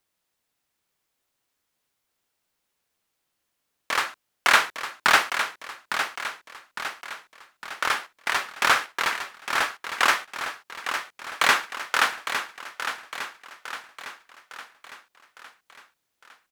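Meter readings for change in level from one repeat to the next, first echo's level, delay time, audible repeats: -5.5 dB, -8.5 dB, 0.857 s, 5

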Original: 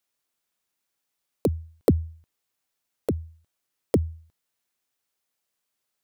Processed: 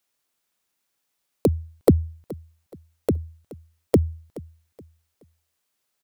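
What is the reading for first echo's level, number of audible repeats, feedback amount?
-19.5 dB, 2, 32%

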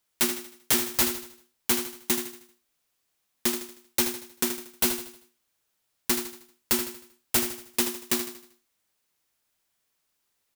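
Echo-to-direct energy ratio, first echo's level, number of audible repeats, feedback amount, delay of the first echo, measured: -8.0 dB, -9.0 dB, 4, 42%, 78 ms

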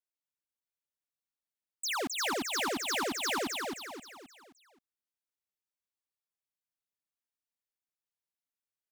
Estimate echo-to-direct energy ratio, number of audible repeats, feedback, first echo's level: -2.5 dB, 5, 43%, -3.5 dB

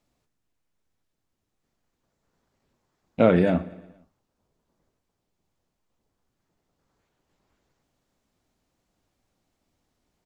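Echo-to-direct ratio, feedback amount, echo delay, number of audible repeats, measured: -18.5 dB, 56%, 0.116 s, 3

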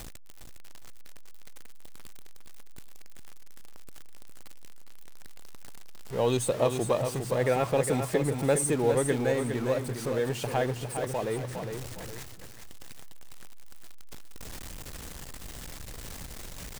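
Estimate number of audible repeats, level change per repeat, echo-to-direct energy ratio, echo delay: 2, -10.0 dB, -6.5 dB, 0.408 s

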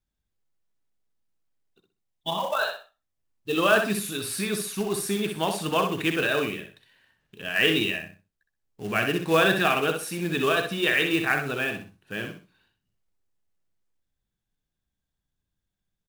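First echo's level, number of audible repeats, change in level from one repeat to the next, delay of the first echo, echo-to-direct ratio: -6.5 dB, 3, -11.5 dB, 63 ms, -6.0 dB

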